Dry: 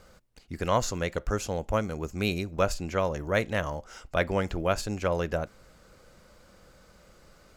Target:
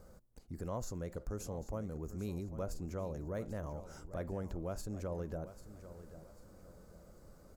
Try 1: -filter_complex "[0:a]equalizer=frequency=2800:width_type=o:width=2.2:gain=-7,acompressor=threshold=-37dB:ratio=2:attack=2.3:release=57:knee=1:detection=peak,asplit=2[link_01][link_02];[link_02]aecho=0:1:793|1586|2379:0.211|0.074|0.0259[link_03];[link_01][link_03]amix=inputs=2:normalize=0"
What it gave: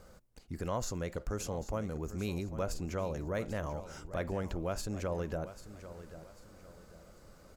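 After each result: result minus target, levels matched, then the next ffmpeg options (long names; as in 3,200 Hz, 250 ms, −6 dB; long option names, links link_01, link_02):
2,000 Hz band +6.0 dB; downward compressor: peak gain reduction −2.5 dB
-filter_complex "[0:a]equalizer=frequency=2800:width_type=o:width=2.2:gain=-18.5,acompressor=threshold=-37dB:ratio=2:attack=2.3:release=57:knee=1:detection=peak,asplit=2[link_01][link_02];[link_02]aecho=0:1:793|1586|2379:0.211|0.074|0.0259[link_03];[link_01][link_03]amix=inputs=2:normalize=0"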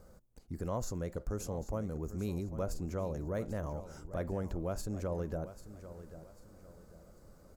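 downward compressor: peak gain reduction −4 dB
-filter_complex "[0:a]equalizer=frequency=2800:width_type=o:width=2.2:gain=-18.5,acompressor=threshold=-44.5dB:ratio=2:attack=2.3:release=57:knee=1:detection=peak,asplit=2[link_01][link_02];[link_02]aecho=0:1:793|1586|2379:0.211|0.074|0.0259[link_03];[link_01][link_03]amix=inputs=2:normalize=0"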